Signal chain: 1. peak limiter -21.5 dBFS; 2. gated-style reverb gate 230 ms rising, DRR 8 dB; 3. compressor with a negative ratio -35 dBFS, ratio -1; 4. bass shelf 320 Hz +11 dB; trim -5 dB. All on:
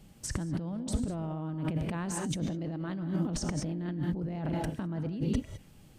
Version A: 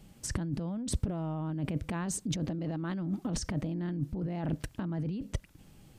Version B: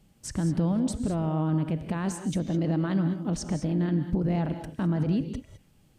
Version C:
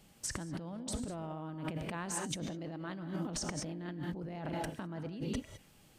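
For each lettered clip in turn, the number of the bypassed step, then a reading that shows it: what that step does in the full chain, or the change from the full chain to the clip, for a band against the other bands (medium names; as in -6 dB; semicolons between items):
2, 8 kHz band +2.0 dB; 3, crest factor change -6.5 dB; 4, 125 Hz band -8.0 dB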